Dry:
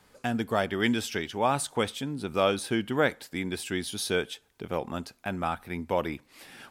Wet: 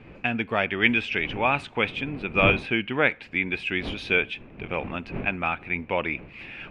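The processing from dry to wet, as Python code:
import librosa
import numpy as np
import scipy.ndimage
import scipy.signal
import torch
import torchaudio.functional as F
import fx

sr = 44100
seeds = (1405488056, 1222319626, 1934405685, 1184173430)

y = fx.dmg_wind(x, sr, seeds[0], corner_hz=310.0, level_db=-38.0)
y = fx.lowpass_res(y, sr, hz=2500.0, q=7.4)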